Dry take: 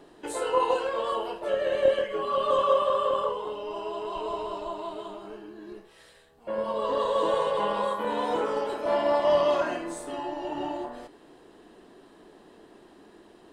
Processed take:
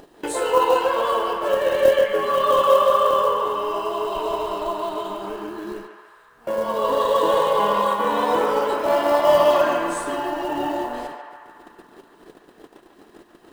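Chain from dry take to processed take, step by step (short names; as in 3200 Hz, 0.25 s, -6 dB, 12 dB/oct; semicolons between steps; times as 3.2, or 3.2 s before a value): de-hum 71.13 Hz, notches 3; gate -48 dBFS, range -30 dB; in parallel at 0 dB: upward compressor, threshold -26 dBFS; on the sum: vibrato 1.1 Hz 8.4 cents; companded quantiser 6-bit; on a send: narrowing echo 0.143 s, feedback 77%, band-pass 1400 Hz, level -4 dB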